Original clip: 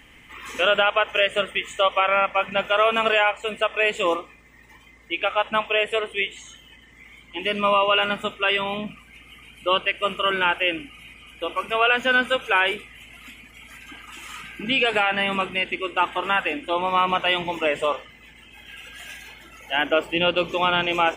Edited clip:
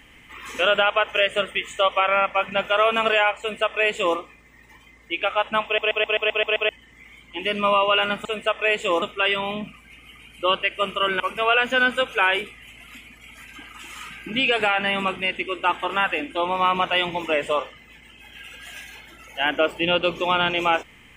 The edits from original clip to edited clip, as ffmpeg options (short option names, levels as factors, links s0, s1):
-filter_complex "[0:a]asplit=12[s0][s1][s2][s3][s4][s5][s6][s7][s8][s9][s10][s11];[s0]atrim=end=5.782[s12];[s1]atrim=start=5.648:end=5.782[s13];[s2]atrim=start=5.648:end=5.782[s14];[s3]atrim=start=5.648:end=5.782[s15];[s4]atrim=start=5.648:end=5.782[s16];[s5]atrim=start=5.648:end=5.782[s17];[s6]atrim=start=5.648:end=5.782[s18];[s7]atrim=start=5.648:end=5.782[s19];[s8]atrim=start=6.688:end=8.252[s20];[s9]atrim=start=3.398:end=4.172[s21];[s10]atrim=start=8.248:end=10.432[s22];[s11]atrim=start=11.528[s23];[s12][s13]acrossfade=d=0.004:c1=hsin:c2=hsin[s24];[s24][s14]acrossfade=d=0.004:c1=hsin:c2=hsin[s25];[s25][s15]acrossfade=d=0.004:c1=hsin:c2=hsin[s26];[s26][s16]acrossfade=d=0.004:c1=hsin:c2=hsin[s27];[s27][s17]acrossfade=d=0.004:c1=hsin:c2=hsin[s28];[s28][s18]acrossfade=d=0.004:c1=hsin:c2=hsin[s29];[s29][s19]acrossfade=d=0.004:c1=hsin:c2=hsin[s30];[s30][s20]acrossfade=d=0.004:c1=hsin:c2=hsin[s31];[s31][s21]acrossfade=d=0.004:c1=hsin:c2=hsin[s32];[s32][s22]acrossfade=d=0.004:c1=hsin:c2=hsin[s33];[s33][s23]acrossfade=d=0.004:c1=hsin:c2=hsin"